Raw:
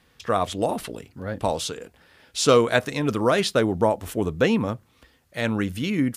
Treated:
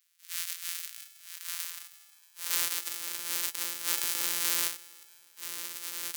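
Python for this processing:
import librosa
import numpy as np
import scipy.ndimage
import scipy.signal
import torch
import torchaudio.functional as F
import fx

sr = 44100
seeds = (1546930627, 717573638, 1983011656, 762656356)

p1 = np.r_[np.sort(x[:len(x) // 256 * 256].reshape(-1, 256), axis=1).ravel(), x[len(x) // 256 * 256:]]
p2 = fx.transient(p1, sr, attack_db=-11, sustain_db=8)
p3 = fx.peak_eq(p2, sr, hz=690.0, db=-14.5, octaves=0.59)
p4 = fx.filter_sweep_highpass(p3, sr, from_hz=1700.0, to_hz=390.0, start_s=1.24, end_s=2.87, q=0.95)
p5 = F.preemphasis(torch.from_numpy(p4), 0.97).numpy()
p6 = p5 + fx.echo_feedback(p5, sr, ms=317, feedback_pct=46, wet_db=-19, dry=0)
y = fx.env_flatten(p6, sr, amount_pct=70, at=(3.87, 4.67), fade=0.02)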